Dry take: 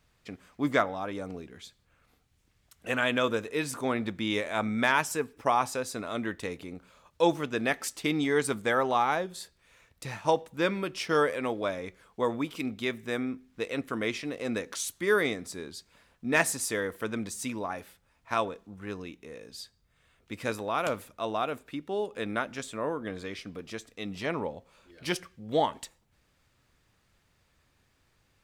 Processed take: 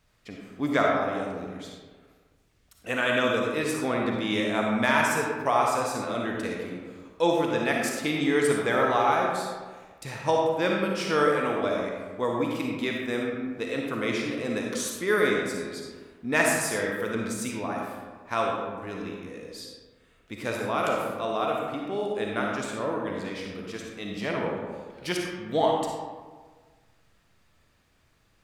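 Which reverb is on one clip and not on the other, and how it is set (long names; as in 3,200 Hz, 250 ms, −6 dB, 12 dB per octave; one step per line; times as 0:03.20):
comb and all-pass reverb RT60 1.5 s, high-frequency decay 0.5×, pre-delay 15 ms, DRR −1 dB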